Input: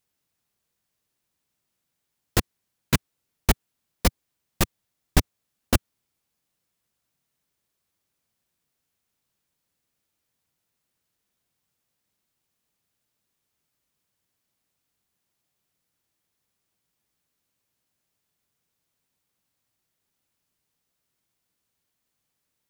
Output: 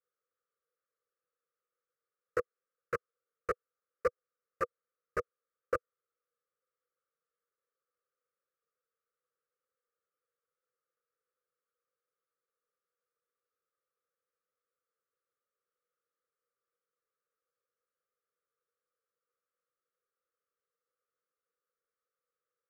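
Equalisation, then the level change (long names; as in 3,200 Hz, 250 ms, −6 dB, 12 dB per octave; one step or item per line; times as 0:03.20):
pair of resonant band-passes 770 Hz, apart 1.3 octaves
phaser with its sweep stopped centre 930 Hz, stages 6
+4.0 dB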